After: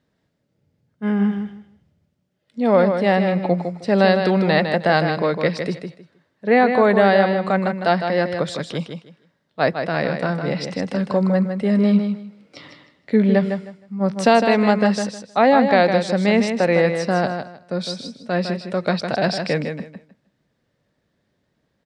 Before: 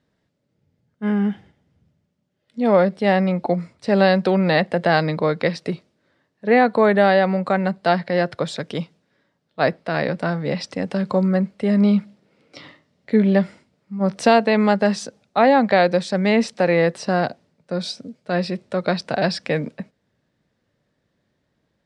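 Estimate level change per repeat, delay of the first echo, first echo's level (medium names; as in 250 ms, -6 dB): -13.5 dB, 156 ms, -7.0 dB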